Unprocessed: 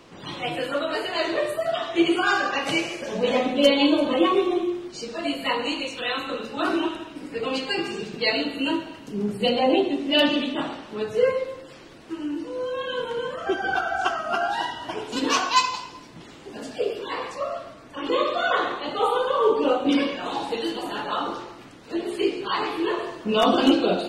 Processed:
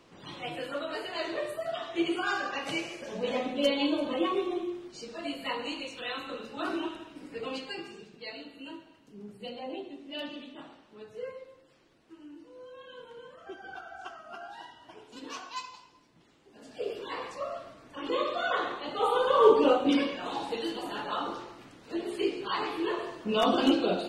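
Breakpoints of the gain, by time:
7.48 s -9 dB
8.17 s -19 dB
16.51 s -19 dB
16.91 s -7 dB
18.92 s -7 dB
19.47 s +1 dB
20.08 s -6 dB

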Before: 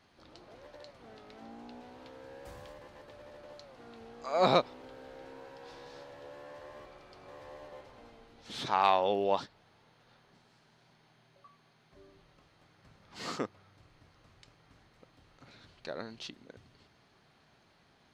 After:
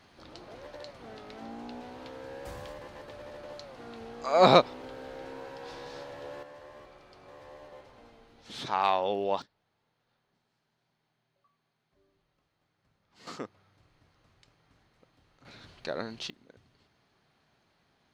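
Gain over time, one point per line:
+6.5 dB
from 6.43 s -0.5 dB
from 9.42 s -13 dB
from 13.27 s -4 dB
from 15.45 s +5.5 dB
from 16.3 s -4.5 dB

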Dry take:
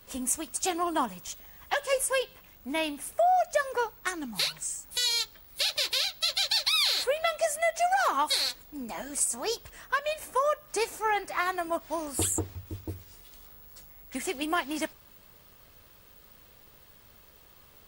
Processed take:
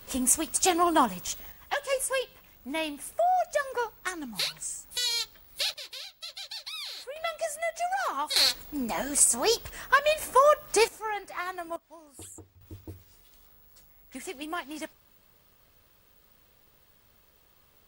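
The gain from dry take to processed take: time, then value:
+5.5 dB
from 1.52 s -1.5 dB
from 5.74 s -13 dB
from 7.16 s -4.5 dB
from 8.36 s +6.5 dB
from 10.88 s -5.5 dB
from 11.76 s -17.5 dB
from 12.61 s -6 dB

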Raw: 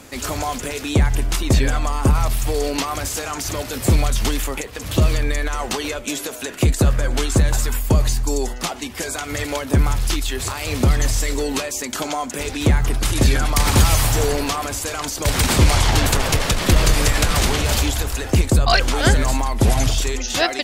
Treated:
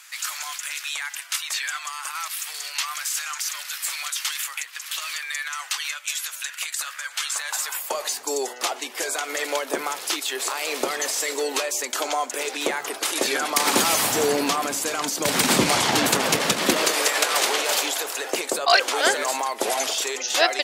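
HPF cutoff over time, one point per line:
HPF 24 dB/oct
7.19 s 1300 Hz
8.27 s 390 Hz
13.15 s 390 Hz
14.32 s 180 Hz
16.54 s 180 Hz
17.03 s 410 Hz

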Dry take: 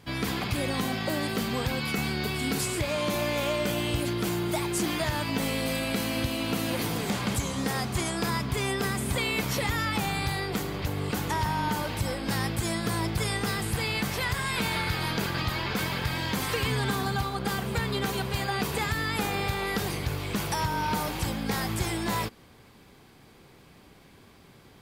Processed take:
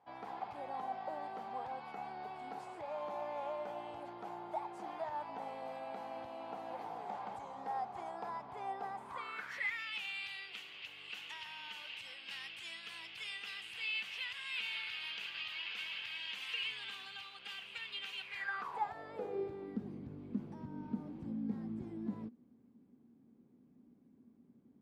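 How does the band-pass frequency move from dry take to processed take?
band-pass, Q 6.2
8.93 s 800 Hz
9.9 s 2800 Hz
18.21 s 2800 Hz
18.76 s 910 Hz
19.79 s 240 Hz

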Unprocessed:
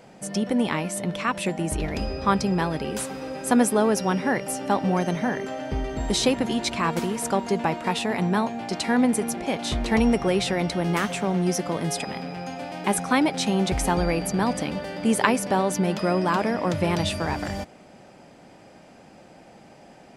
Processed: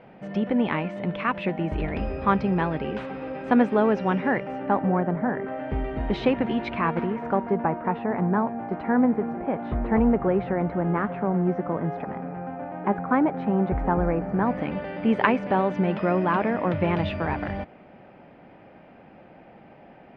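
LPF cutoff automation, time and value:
LPF 24 dB/oct
4.28 s 2800 Hz
5.18 s 1500 Hz
5.75 s 2600 Hz
6.67 s 2600 Hz
7.72 s 1600 Hz
14.27 s 1600 Hz
14.79 s 2700 Hz

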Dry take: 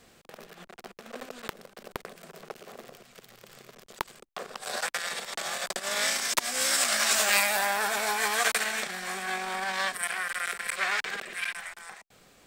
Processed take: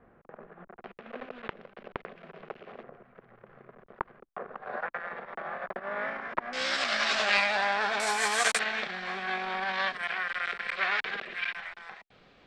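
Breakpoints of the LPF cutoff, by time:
LPF 24 dB/oct
1600 Hz
from 0.84 s 2800 Hz
from 2.83 s 1700 Hz
from 6.53 s 4400 Hz
from 8 s 9400 Hz
from 8.59 s 4000 Hz

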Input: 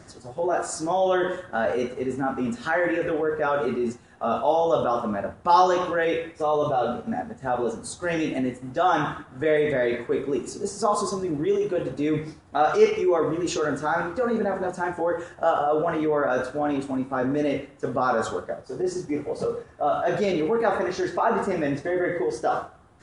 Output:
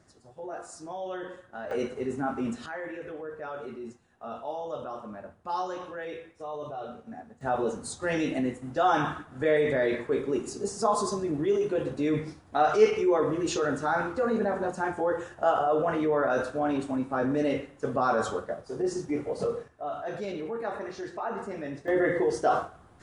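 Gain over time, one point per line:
-14 dB
from 1.71 s -4 dB
from 2.66 s -14 dB
from 7.41 s -2.5 dB
from 19.68 s -11 dB
from 21.88 s 0 dB

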